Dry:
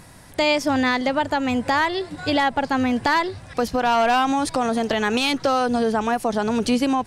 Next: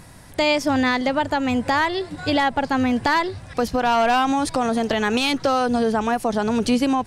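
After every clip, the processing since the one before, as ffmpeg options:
ffmpeg -i in.wav -af "lowshelf=frequency=160:gain=3.5" out.wav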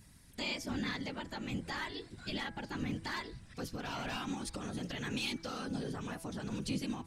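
ffmpeg -i in.wav -af "afftfilt=real='hypot(re,im)*cos(2*PI*random(0))':imag='hypot(re,im)*sin(2*PI*random(1))':win_size=512:overlap=0.75,equalizer=frequency=700:width=0.62:gain=-13.5,bandreject=frequency=164.6:width_type=h:width=4,bandreject=frequency=329.2:width_type=h:width=4,bandreject=frequency=493.8:width_type=h:width=4,bandreject=frequency=658.4:width_type=h:width=4,bandreject=frequency=823:width_type=h:width=4,bandreject=frequency=987.6:width_type=h:width=4,bandreject=frequency=1152.2:width_type=h:width=4,bandreject=frequency=1316.8:width_type=h:width=4,bandreject=frequency=1481.4:width_type=h:width=4,bandreject=frequency=1646:width_type=h:width=4,bandreject=frequency=1810.6:width_type=h:width=4,bandreject=frequency=1975.2:width_type=h:width=4,bandreject=frequency=2139.8:width_type=h:width=4,bandreject=frequency=2304.4:width_type=h:width=4,volume=-6.5dB" out.wav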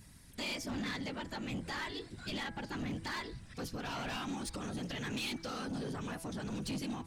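ffmpeg -i in.wav -af "asoftclip=type=tanh:threshold=-36dB,volume=2.5dB" out.wav

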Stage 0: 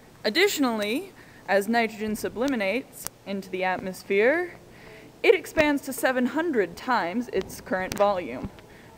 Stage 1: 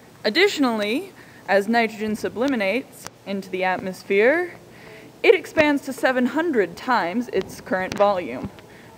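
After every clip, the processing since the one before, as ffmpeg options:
ffmpeg -i in.wav -filter_complex "[0:a]acrossover=split=5900[link_01][link_02];[link_02]acompressor=threshold=-46dB:ratio=4:attack=1:release=60[link_03];[link_01][link_03]amix=inputs=2:normalize=0,highpass=80,volume=4dB" out.wav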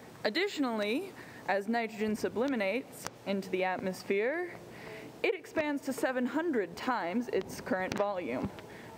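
ffmpeg -i in.wav -af "equalizer=frequency=630:width=0.3:gain=3,acompressor=threshold=-22dB:ratio=12,volume=-5.5dB" out.wav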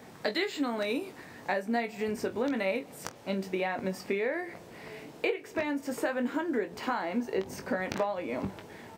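ffmpeg -i in.wav -af "aecho=1:1:21|47:0.422|0.126" out.wav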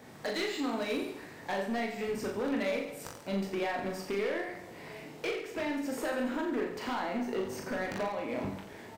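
ffmpeg -i in.wav -af "asoftclip=type=hard:threshold=-27.5dB,aecho=1:1:40|86|138.9|199.7|269.7:0.631|0.398|0.251|0.158|0.1,volume=-2.5dB" out.wav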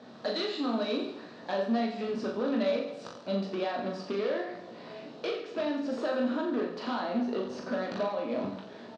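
ffmpeg -i in.wav -filter_complex "[0:a]highpass=170,equalizer=frequency=220:width_type=q:width=4:gain=7,equalizer=frequency=610:width_type=q:width=4:gain=6,equalizer=frequency=870:width_type=q:width=4:gain=-3,equalizer=frequency=1200:width_type=q:width=4:gain=4,equalizer=frequency=2100:width_type=q:width=4:gain=-10,equalizer=frequency=4000:width_type=q:width=4:gain=6,lowpass=frequency=5200:width=0.5412,lowpass=frequency=5200:width=1.3066,asplit=2[link_01][link_02];[link_02]adelay=17,volume=-11dB[link_03];[link_01][link_03]amix=inputs=2:normalize=0" out.wav

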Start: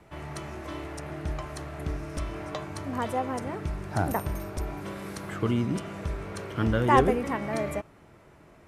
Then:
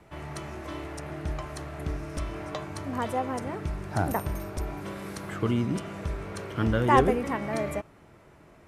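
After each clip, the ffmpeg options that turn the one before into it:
ffmpeg -i in.wav -af anull out.wav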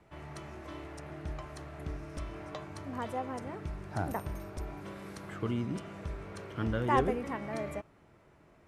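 ffmpeg -i in.wav -af "highshelf=frequency=9000:gain=-6.5,volume=-7dB" out.wav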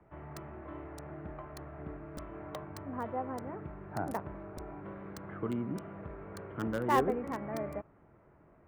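ffmpeg -i in.wav -filter_complex "[0:a]acrossover=split=150|2000[link_01][link_02][link_03];[link_01]acompressor=threshold=-48dB:ratio=6[link_04];[link_03]acrusher=bits=6:mix=0:aa=0.000001[link_05];[link_04][link_02][link_05]amix=inputs=3:normalize=0" out.wav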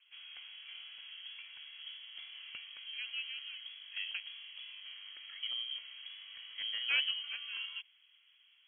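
ffmpeg -i in.wav -af "lowpass=frequency=2900:width_type=q:width=0.5098,lowpass=frequency=2900:width_type=q:width=0.6013,lowpass=frequency=2900:width_type=q:width=0.9,lowpass=frequency=2900:width_type=q:width=2.563,afreqshift=-3400,volume=-5dB" out.wav

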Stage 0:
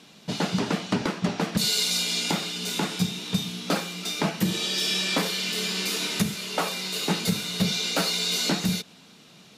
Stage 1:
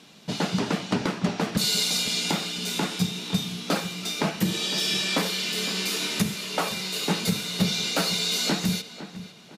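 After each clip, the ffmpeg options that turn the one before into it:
ffmpeg -i in.wav -filter_complex "[0:a]asplit=2[link_01][link_02];[link_02]adelay=508,lowpass=frequency=2700:poles=1,volume=-13dB,asplit=2[link_03][link_04];[link_04]adelay=508,lowpass=frequency=2700:poles=1,volume=0.36,asplit=2[link_05][link_06];[link_06]adelay=508,lowpass=frequency=2700:poles=1,volume=0.36,asplit=2[link_07][link_08];[link_08]adelay=508,lowpass=frequency=2700:poles=1,volume=0.36[link_09];[link_01][link_03][link_05][link_07][link_09]amix=inputs=5:normalize=0" out.wav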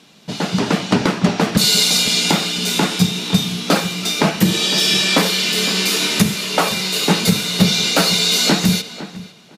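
ffmpeg -i in.wav -af "dynaudnorm=framelen=100:gausssize=11:maxgain=8dB,volume=2.5dB" out.wav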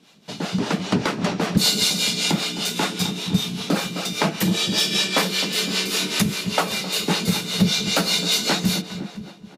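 ffmpeg -i in.wav -filter_complex "[0:a]asplit=2[link_01][link_02];[link_02]adelay=261,lowpass=frequency=1500:poles=1,volume=-9.5dB,asplit=2[link_03][link_04];[link_04]adelay=261,lowpass=frequency=1500:poles=1,volume=0.53,asplit=2[link_05][link_06];[link_06]adelay=261,lowpass=frequency=1500:poles=1,volume=0.53,asplit=2[link_07][link_08];[link_08]adelay=261,lowpass=frequency=1500:poles=1,volume=0.53,asplit=2[link_09][link_10];[link_10]adelay=261,lowpass=frequency=1500:poles=1,volume=0.53,asplit=2[link_11][link_12];[link_12]adelay=261,lowpass=frequency=1500:poles=1,volume=0.53[link_13];[link_01][link_03][link_05][link_07][link_09][link_11][link_13]amix=inputs=7:normalize=0,acrossover=split=420[link_14][link_15];[link_14]aeval=exprs='val(0)*(1-0.7/2+0.7/2*cos(2*PI*5.1*n/s))':channel_layout=same[link_16];[link_15]aeval=exprs='val(0)*(1-0.7/2-0.7/2*cos(2*PI*5.1*n/s))':channel_layout=same[link_17];[link_16][link_17]amix=inputs=2:normalize=0,volume=-2.5dB" out.wav

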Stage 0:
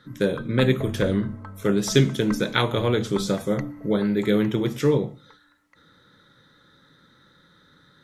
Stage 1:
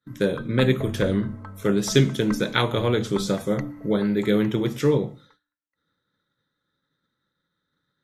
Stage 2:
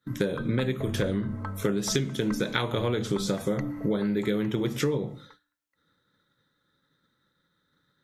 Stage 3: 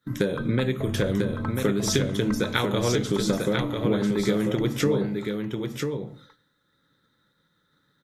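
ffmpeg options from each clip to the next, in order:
ffmpeg -i in.wav -af "agate=range=-33dB:threshold=-43dB:ratio=3:detection=peak" out.wav
ffmpeg -i in.wav -af "acompressor=threshold=-28dB:ratio=12,volume=5dB" out.wav
ffmpeg -i in.wav -af "aecho=1:1:994:0.562,volume=2.5dB" out.wav

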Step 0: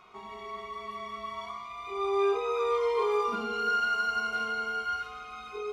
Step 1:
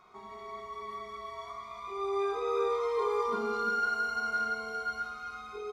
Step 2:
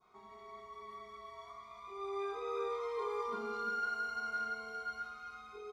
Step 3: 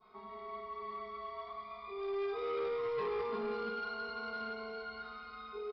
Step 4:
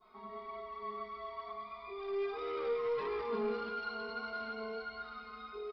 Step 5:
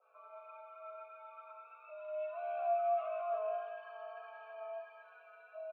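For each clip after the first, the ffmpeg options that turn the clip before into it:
ffmpeg -i in.wav -filter_complex "[0:a]equalizer=frequency=2800:width_type=o:width=0.32:gain=-13.5,asplit=2[link_01][link_02];[link_02]aecho=0:1:59|340:0.316|0.501[link_03];[link_01][link_03]amix=inputs=2:normalize=0,volume=-3dB" out.wav
ffmpeg -i in.wav -af "adynamicequalizer=threshold=0.00891:dfrequency=2200:dqfactor=0.81:tfrequency=2200:tqfactor=0.81:attack=5:release=100:ratio=0.375:range=1.5:mode=boostabove:tftype=bell,volume=-8.5dB" out.wav
ffmpeg -i in.wav -af "aecho=1:1:4.6:0.62,aresample=11025,asoftclip=type=tanh:threshold=-35.5dB,aresample=44100,aecho=1:1:1035:0.0944,volume=3.5dB" out.wav
ffmpeg -i in.wav -af "flanger=delay=2.9:depth=1.8:regen=34:speed=1.6:shape=sinusoidal,volume=4dB" out.wav
ffmpeg -i in.wav -filter_complex "[0:a]aeval=exprs='val(0)+0.002*(sin(2*PI*60*n/s)+sin(2*PI*2*60*n/s)/2+sin(2*PI*3*60*n/s)/3+sin(2*PI*4*60*n/s)/4+sin(2*PI*5*60*n/s)/5)':channel_layout=same,highpass=frequency=280:width_type=q:width=0.5412,highpass=frequency=280:width_type=q:width=1.307,lowpass=frequency=3100:width_type=q:width=0.5176,lowpass=frequency=3100:width_type=q:width=0.7071,lowpass=frequency=3100:width_type=q:width=1.932,afreqshift=220,asplit=3[link_01][link_02][link_03];[link_01]bandpass=frequency=730:width_type=q:width=8,volume=0dB[link_04];[link_02]bandpass=frequency=1090:width_type=q:width=8,volume=-6dB[link_05];[link_03]bandpass=frequency=2440:width_type=q:width=8,volume=-9dB[link_06];[link_04][link_05][link_06]amix=inputs=3:normalize=0,volume=4dB" out.wav

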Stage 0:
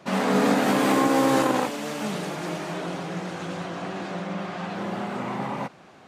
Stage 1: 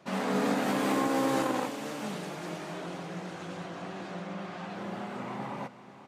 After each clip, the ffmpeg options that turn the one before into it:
ffmpeg -i in.wav -af "aecho=1:1:485:0.188,volume=-7.5dB" out.wav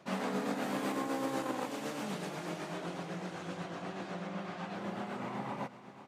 ffmpeg -i in.wav -af "acompressor=threshold=-30dB:ratio=6,tremolo=f=8:d=0.38" out.wav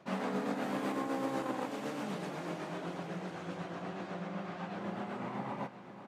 ffmpeg -i in.wav -af "highshelf=frequency=3700:gain=-7,aecho=1:1:1047:0.2" out.wav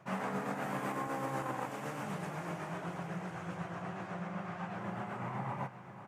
ffmpeg -i in.wav -af "equalizer=frequency=125:width_type=o:width=1:gain=7,equalizer=frequency=250:width_type=o:width=1:gain=-11,equalizer=frequency=500:width_type=o:width=1:gain=-5,equalizer=frequency=4000:width_type=o:width=1:gain=-11,volume=3.5dB" out.wav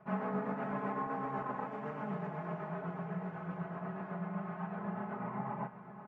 ffmpeg -i in.wav -af "lowpass=1500,aecho=1:1:4.7:0.87,volume=-2dB" out.wav

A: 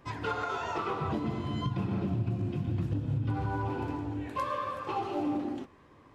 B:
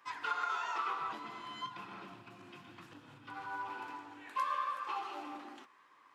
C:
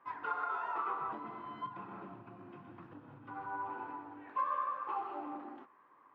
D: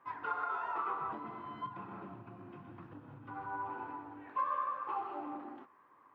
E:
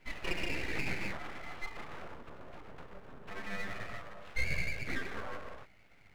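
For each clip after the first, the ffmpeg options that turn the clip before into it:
ffmpeg -i in.wav -af "highpass=350,lowshelf=frequency=790:width_type=q:width=1.5:gain=-10.5,volume=-2.5dB" out.wav
ffmpeg -i in.wav -af "lowpass=1100,volume=3.5dB" out.wav
ffmpeg -i in.wav -af "equalizer=frequency=69:width=0.64:gain=6.5" out.wav
ffmpeg -i in.wav -af "aeval=exprs='abs(val(0))':channel_layout=same,volume=4dB" out.wav

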